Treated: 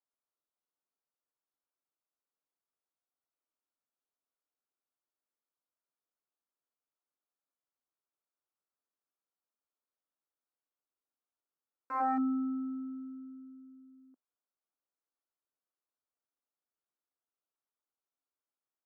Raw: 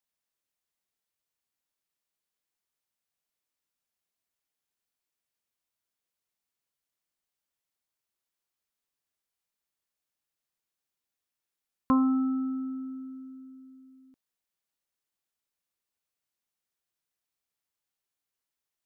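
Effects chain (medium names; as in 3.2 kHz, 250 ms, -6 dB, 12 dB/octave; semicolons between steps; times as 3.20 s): Chebyshev shaper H 2 -35 dB, 3 -37 dB, 4 -45 dB, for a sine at -14.5 dBFS; integer overflow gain 22.5 dB; elliptic band-pass 250–1400 Hz, stop band 40 dB; trim -2.5 dB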